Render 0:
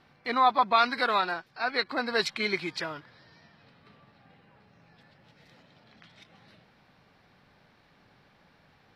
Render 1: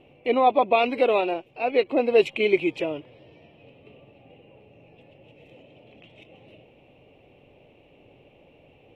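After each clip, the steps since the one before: EQ curve 130 Hz 0 dB, 190 Hz -7 dB, 300 Hz +5 dB, 550 Hz +7 dB, 1600 Hz -24 dB, 2700 Hz +6 dB, 4600 Hz -26 dB, 7000 Hz -12 dB; gain +7 dB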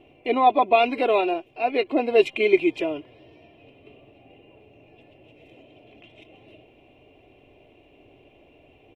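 comb 2.9 ms, depth 50%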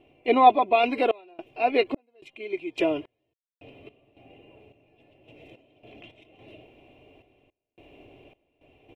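random-step tremolo 3.6 Hz, depth 100%; gain +3 dB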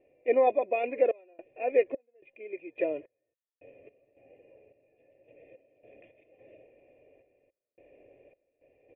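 vocal tract filter e; gain +5 dB

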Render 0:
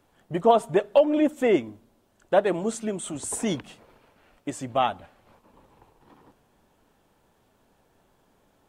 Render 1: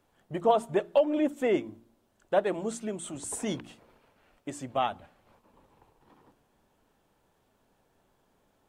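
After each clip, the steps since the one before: de-hum 57.47 Hz, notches 6; gain -5 dB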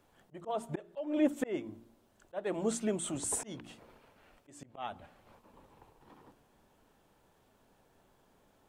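auto swell 0.392 s; gain +2 dB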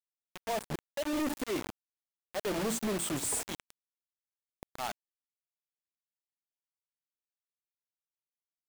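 companded quantiser 2-bit; gain -5 dB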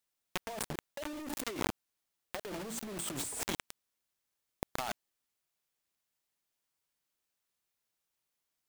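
negative-ratio compressor -42 dBFS, ratio -1; gain +3 dB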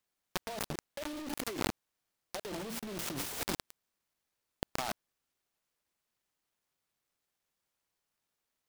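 noise-modulated delay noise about 2800 Hz, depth 0.078 ms; gain +1 dB

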